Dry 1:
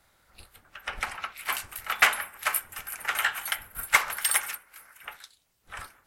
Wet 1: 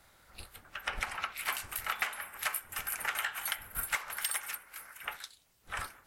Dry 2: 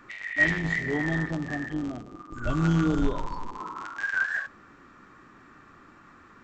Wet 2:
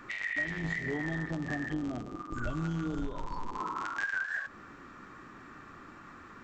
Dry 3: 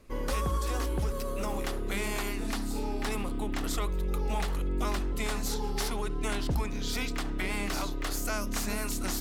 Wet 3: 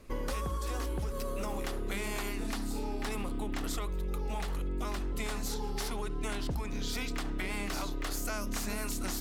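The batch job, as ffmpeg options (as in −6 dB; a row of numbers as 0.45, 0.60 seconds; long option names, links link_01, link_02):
-af "acompressor=threshold=-33dB:ratio=12,volume=2.5dB"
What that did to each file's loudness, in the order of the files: −8.5, −7.0, −3.5 LU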